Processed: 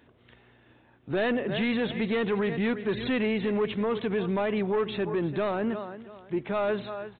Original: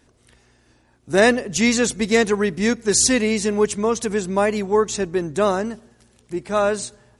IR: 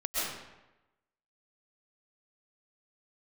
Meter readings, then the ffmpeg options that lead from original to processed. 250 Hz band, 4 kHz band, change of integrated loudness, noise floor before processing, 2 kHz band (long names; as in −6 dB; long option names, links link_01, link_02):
−6.5 dB, −11.0 dB, −9.0 dB, −59 dBFS, −9.5 dB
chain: -af "highpass=86,aecho=1:1:340|680:0.126|0.034,aresample=8000,asoftclip=type=tanh:threshold=-14dB,aresample=44100,alimiter=limit=-21dB:level=0:latency=1:release=53"